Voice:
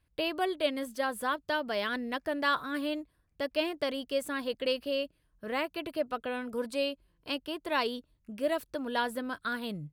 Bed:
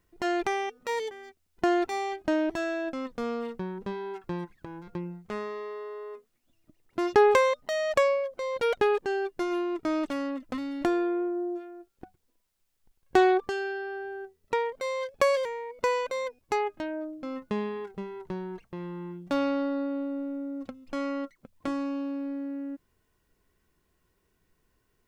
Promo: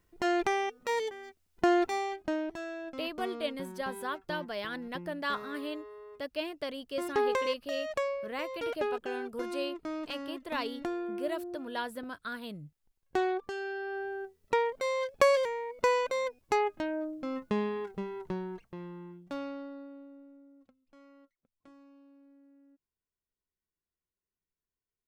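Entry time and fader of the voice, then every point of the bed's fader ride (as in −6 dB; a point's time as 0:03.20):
2.80 s, −5.0 dB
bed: 0:01.91 −0.5 dB
0:02.53 −9 dB
0:13.36 −9 dB
0:13.99 0 dB
0:18.28 0 dB
0:20.87 −26 dB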